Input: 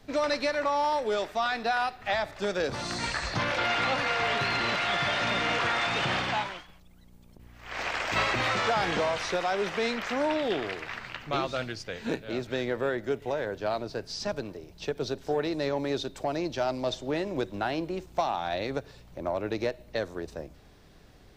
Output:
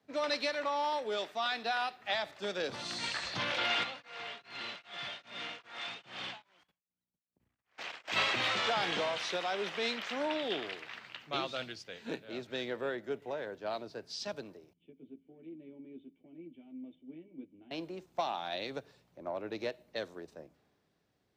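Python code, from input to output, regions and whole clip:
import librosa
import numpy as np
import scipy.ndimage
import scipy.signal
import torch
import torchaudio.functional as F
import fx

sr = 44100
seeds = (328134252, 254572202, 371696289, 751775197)

y = fx.chain(x, sr, fx.level_steps(step_db=17),
    fx.quant_float(bits=8),
    fx.tremolo_abs(hz=2.5), at=(3.83, 8.08))
y = fx.chain(y, sr, fx.formant_cascade(vowel='i'),
    fx.doubler(ms=12.0, db=-3.0), at=(14.73, 17.71))
y = scipy.signal.sosfilt(scipy.signal.butter(2, 160.0, 'highpass', fs=sr, output='sos'), y)
y = fx.dynamic_eq(y, sr, hz=3300.0, q=1.6, threshold_db=-48.0, ratio=4.0, max_db=8)
y = fx.band_widen(y, sr, depth_pct=40)
y = y * librosa.db_to_amplitude(-7.5)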